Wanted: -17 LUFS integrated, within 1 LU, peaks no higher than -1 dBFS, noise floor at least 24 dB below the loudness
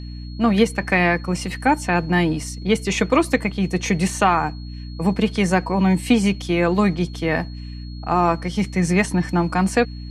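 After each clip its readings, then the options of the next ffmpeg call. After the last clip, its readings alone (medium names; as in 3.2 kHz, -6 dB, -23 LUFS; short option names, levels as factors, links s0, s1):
hum 60 Hz; highest harmonic 300 Hz; hum level -31 dBFS; steady tone 4.3 kHz; tone level -45 dBFS; loudness -20.0 LUFS; peak level -3.0 dBFS; loudness target -17.0 LUFS
-> -af "bandreject=f=60:t=h:w=4,bandreject=f=120:t=h:w=4,bandreject=f=180:t=h:w=4,bandreject=f=240:t=h:w=4,bandreject=f=300:t=h:w=4"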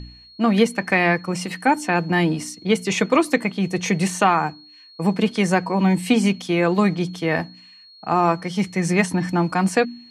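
hum not found; steady tone 4.3 kHz; tone level -45 dBFS
-> -af "bandreject=f=4300:w=30"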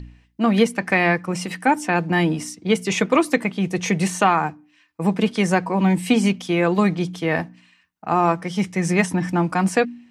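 steady tone not found; loudness -20.5 LUFS; peak level -3.5 dBFS; loudness target -17.0 LUFS
-> -af "volume=1.5,alimiter=limit=0.891:level=0:latency=1"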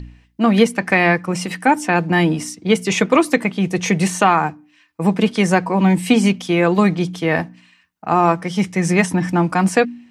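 loudness -17.0 LUFS; peak level -1.0 dBFS; noise floor -56 dBFS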